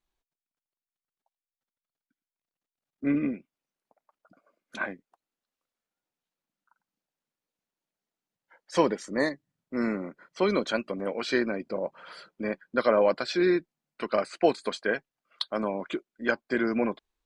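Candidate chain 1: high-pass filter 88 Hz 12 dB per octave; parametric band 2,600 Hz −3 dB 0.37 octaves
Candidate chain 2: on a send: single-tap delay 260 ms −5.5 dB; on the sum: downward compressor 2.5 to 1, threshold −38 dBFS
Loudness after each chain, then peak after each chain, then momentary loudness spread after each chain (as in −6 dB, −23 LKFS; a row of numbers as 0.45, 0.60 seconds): −29.0, −38.5 LKFS; −8.5, −19.5 dBFS; 12, 6 LU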